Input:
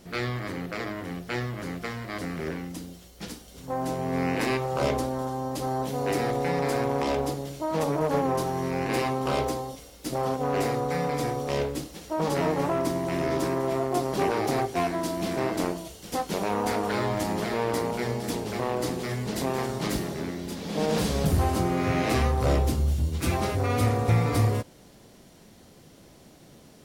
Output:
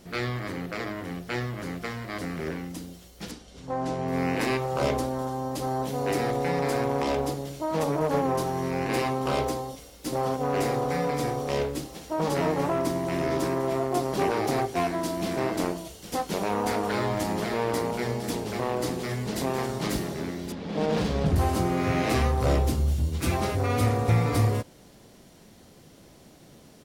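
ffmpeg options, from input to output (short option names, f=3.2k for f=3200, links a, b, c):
-filter_complex "[0:a]asettb=1/sr,asplit=3[a][b][c];[a]atrim=end=3.314[d];[b]atrim=start=3.31:end=4.08,asetpts=PTS-STARTPTS,afade=t=in:d=0.004:c=qsin,afade=t=out:st=0.766:d=0.004:c=qsin,lowpass=6.4k[e];[c]atrim=start=4.076[f];[d][e]acrossfade=d=0.004:c1=hsin:c2=qsin[g];[g][f]acrossfade=d=0.004:c1=qsin:c2=hsin,asplit=2[h][i];[i]afade=t=in:st=9.51:d=0.01,afade=t=out:st=10.54:d=0.01,aecho=0:1:560|1120|1680|2240|2800:0.398107|0.179148|0.0806167|0.0362775|0.0163249[j];[h][j]amix=inputs=2:normalize=0,asettb=1/sr,asplit=3[k][l][m];[k]atrim=end=20.524[n];[l]atrim=start=20.52:end=21.36,asetpts=PTS-STARTPTS,afade=t=in:d=0.004:c=qsin,afade=t=out:st=0.836:d=0.004:c=qsin,adynamicsmooth=sensitivity=4.5:basefreq=2.8k[o];[m]atrim=start=21.356[p];[n][o]acrossfade=d=0.004:c1=hsin:c2=qsin[q];[q][p]acrossfade=d=0.004:c1=qsin:c2=hsin"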